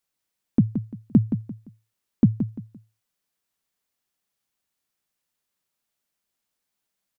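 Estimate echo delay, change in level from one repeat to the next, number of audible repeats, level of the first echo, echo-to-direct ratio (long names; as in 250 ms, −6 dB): 172 ms, −11.0 dB, 3, −9.0 dB, −8.5 dB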